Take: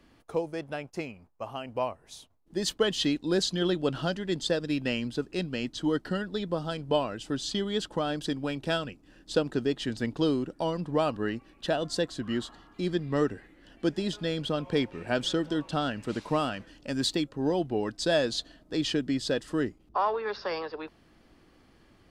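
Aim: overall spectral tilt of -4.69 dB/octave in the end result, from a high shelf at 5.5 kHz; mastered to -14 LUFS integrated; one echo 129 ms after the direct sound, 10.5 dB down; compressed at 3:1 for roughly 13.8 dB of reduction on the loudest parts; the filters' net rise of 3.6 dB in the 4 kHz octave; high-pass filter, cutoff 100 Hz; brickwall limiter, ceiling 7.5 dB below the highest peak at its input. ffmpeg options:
-af "highpass=100,equalizer=f=4000:t=o:g=6.5,highshelf=f=5500:g=-5.5,acompressor=threshold=0.0112:ratio=3,alimiter=level_in=2.11:limit=0.0631:level=0:latency=1,volume=0.473,aecho=1:1:129:0.299,volume=23.7"

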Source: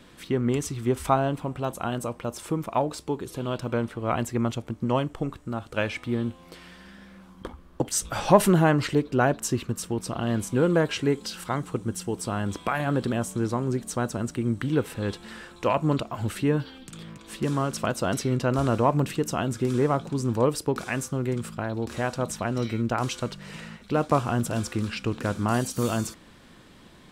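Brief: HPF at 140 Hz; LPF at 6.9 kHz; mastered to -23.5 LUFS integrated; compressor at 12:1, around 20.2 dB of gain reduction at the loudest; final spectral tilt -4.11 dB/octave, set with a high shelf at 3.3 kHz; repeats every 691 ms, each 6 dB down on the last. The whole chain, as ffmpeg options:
-af "highpass=140,lowpass=6900,highshelf=f=3300:g=9,acompressor=threshold=0.0282:ratio=12,aecho=1:1:691|1382|2073|2764|3455|4146:0.501|0.251|0.125|0.0626|0.0313|0.0157,volume=4.22"

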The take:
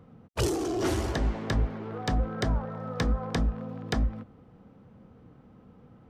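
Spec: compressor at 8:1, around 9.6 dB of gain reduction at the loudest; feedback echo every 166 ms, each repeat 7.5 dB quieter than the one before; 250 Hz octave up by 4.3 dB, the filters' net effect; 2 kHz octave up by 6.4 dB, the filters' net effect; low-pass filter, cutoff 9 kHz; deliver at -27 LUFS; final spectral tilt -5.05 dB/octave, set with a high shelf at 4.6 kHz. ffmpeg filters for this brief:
-af "lowpass=9000,equalizer=f=250:t=o:g=5.5,equalizer=f=2000:t=o:g=6.5,highshelf=f=4600:g=8,acompressor=threshold=0.0316:ratio=8,aecho=1:1:166|332|498|664|830:0.422|0.177|0.0744|0.0312|0.0131,volume=2.37"

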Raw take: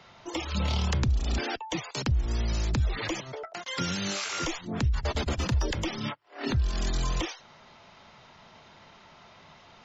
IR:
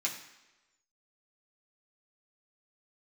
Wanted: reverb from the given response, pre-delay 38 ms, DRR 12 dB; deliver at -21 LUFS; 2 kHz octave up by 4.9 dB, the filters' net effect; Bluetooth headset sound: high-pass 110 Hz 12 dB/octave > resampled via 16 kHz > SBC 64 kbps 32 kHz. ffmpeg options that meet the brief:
-filter_complex "[0:a]equalizer=f=2000:t=o:g=6,asplit=2[s0][s1];[1:a]atrim=start_sample=2205,adelay=38[s2];[s1][s2]afir=irnorm=-1:irlink=0,volume=0.158[s3];[s0][s3]amix=inputs=2:normalize=0,highpass=110,aresample=16000,aresample=44100,volume=3.16" -ar 32000 -c:a sbc -b:a 64k

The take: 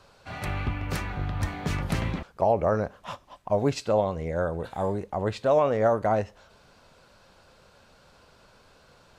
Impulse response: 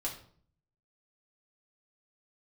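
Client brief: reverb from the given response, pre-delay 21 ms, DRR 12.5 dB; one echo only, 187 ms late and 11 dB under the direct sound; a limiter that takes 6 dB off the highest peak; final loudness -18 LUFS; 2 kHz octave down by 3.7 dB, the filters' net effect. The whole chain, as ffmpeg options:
-filter_complex "[0:a]equalizer=f=2000:t=o:g=-5,alimiter=limit=0.133:level=0:latency=1,aecho=1:1:187:0.282,asplit=2[s0][s1];[1:a]atrim=start_sample=2205,adelay=21[s2];[s1][s2]afir=irnorm=-1:irlink=0,volume=0.188[s3];[s0][s3]amix=inputs=2:normalize=0,volume=3.55"

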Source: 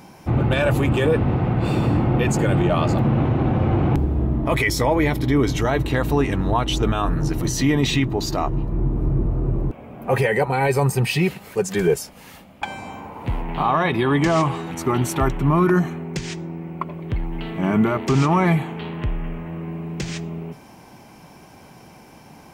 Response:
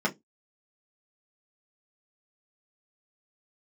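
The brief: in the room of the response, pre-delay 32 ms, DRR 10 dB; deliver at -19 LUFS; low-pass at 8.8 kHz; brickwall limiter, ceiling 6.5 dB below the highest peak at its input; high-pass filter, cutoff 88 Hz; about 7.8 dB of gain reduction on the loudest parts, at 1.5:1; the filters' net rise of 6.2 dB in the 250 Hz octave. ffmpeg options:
-filter_complex "[0:a]highpass=88,lowpass=8800,equalizer=f=250:t=o:g=8.5,acompressor=threshold=0.0316:ratio=1.5,alimiter=limit=0.15:level=0:latency=1,asplit=2[s0][s1];[1:a]atrim=start_sample=2205,adelay=32[s2];[s1][s2]afir=irnorm=-1:irlink=0,volume=0.0944[s3];[s0][s3]amix=inputs=2:normalize=0,volume=2.24"

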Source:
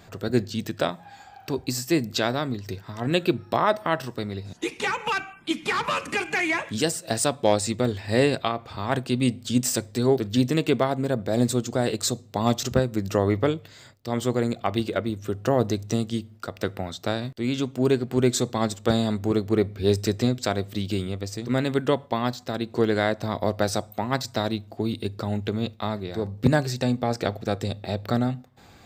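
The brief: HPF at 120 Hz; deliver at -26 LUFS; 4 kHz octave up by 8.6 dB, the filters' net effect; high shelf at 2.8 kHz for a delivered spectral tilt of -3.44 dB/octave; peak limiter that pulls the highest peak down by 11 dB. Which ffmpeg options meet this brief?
-af "highpass=120,highshelf=f=2800:g=8,equalizer=f=4000:t=o:g=4,volume=1.06,alimiter=limit=0.237:level=0:latency=1"

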